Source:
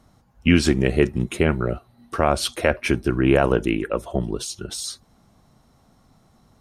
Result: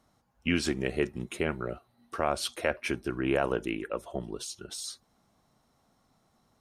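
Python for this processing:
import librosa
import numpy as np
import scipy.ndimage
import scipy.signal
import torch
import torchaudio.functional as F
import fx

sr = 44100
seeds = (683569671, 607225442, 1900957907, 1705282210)

y = fx.low_shelf(x, sr, hz=210.0, db=-9.5)
y = y * librosa.db_to_amplitude(-8.0)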